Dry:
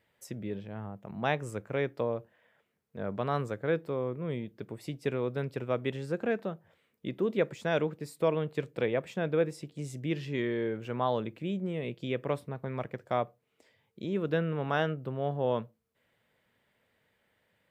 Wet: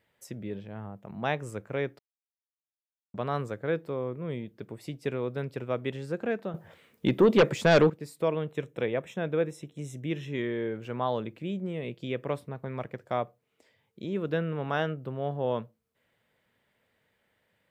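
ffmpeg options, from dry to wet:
-filter_complex "[0:a]asettb=1/sr,asplit=3[a][b][c];[a]atrim=end=6.544[d];[b]atrim=start=6.54:end=7.9,asetpts=PTS-STARTPTS,afade=t=in:d=0.004:c=qsin,afade=t=out:st=1.356:d=0.004:c=qsin,aeval=exprs='0.2*sin(PI/2*2.51*val(0)/0.2)':c=same[e];[c]atrim=start=7.896[f];[d][e]acrossfade=d=0.004:c1=hsin:c2=qsin[g];[g][f]acrossfade=d=0.004:c1=qsin:c2=hsin,asettb=1/sr,asplit=3[h][i][j];[h]atrim=end=8.514[k];[i]atrim=start=8.51:end=10.72,asetpts=PTS-STARTPTS,afade=t=in:d=0.004:c=qsin,afade=t=out:st=2.206:d=0.004:c=qsin,asuperstop=centerf=4600:order=8:qfactor=4.1[l];[j]atrim=start=10.716[m];[k][l]acrossfade=d=0.004:c1=hsin:c2=qsin[n];[n][m]acrossfade=d=0.004:c1=qsin:c2=hsin,asplit=3[o][p][q];[o]atrim=end=1.99,asetpts=PTS-STARTPTS,afade=t=out:st=1.986:d=0.004:c=hsin[r];[p]atrim=start=1.99:end=3.14,asetpts=PTS-STARTPTS,volume=0[s];[q]atrim=start=3.14,asetpts=PTS-STARTPTS,afade=t=in:d=0.004:c=hsin[t];[r][s][t]concat=n=3:v=0:a=1"

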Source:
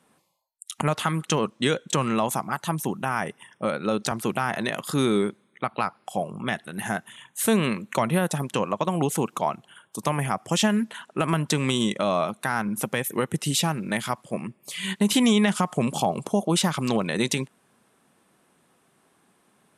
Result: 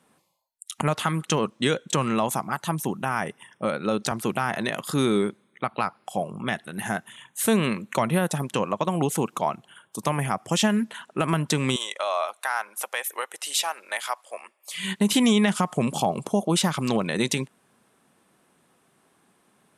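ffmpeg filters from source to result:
-filter_complex "[0:a]asettb=1/sr,asplit=3[a][b][c];[a]atrim=end=11.764[d];[b]atrim=start=11.76:end=14.74,asetpts=PTS-STARTPTS,afade=t=in:d=0.004:c=qsin,afade=t=out:st=2.976:d=0.004:c=qsin,highpass=f=610:w=0.5412,highpass=f=610:w=1.3066[e];[c]atrim=start=14.736[f];[d][e]acrossfade=d=0.004:c1=hsin:c2=qsin[g];[g][f]acrossfade=d=0.004:c1=qsin:c2=hsin"

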